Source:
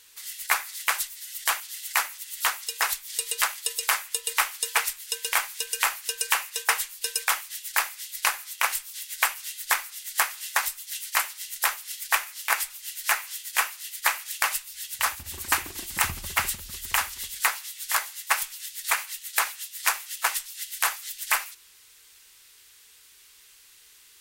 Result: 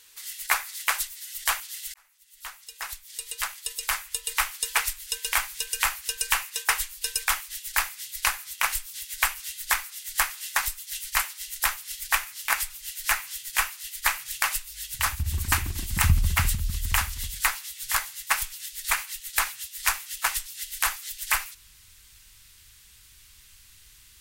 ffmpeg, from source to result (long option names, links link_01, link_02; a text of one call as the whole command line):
ffmpeg -i in.wav -filter_complex "[0:a]asplit=2[link_01][link_02];[link_01]atrim=end=1.94,asetpts=PTS-STARTPTS,afade=type=out:start_time=1.936:duration=0.004:curve=hsin[link_03];[link_02]atrim=start=1.94,asetpts=PTS-STARTPTS,afade=type=in:duration=2.78[link_04];[link_03][link_04]concat=n=2:v=0:a=1,asubboost=boost=12:cutoff=130" out.wav